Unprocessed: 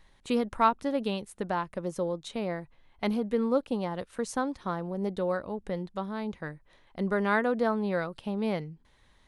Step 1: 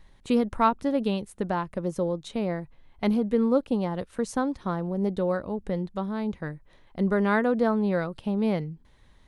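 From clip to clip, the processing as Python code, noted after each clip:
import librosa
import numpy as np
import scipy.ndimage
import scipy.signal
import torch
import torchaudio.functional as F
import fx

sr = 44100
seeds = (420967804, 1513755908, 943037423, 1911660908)

y = fx.low_shelf(x, sr, hz=430.0, db=7.0)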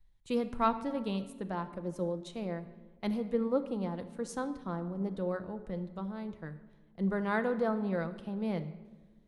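y = fx.room_shoebox(x, sr, seeds[0], volume_m3=2300.0, walls='mixed', distance_m=0.71)
y = fx.band_widen(y, sr, depth_pct=40)
y = y * librosa.db_to_amplitude(-8.5)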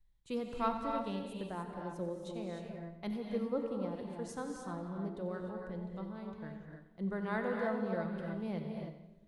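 y = fx.echo_feedback(x, sr, ms=90, feedback_pct=45, wet_db=-13.5)
y = fx.rev_gated(y, sr, seeds[1], gate_ms=330, shape='rising', drr_db=2.0)
y = y * librosa.db_to_amplitude(-6.0)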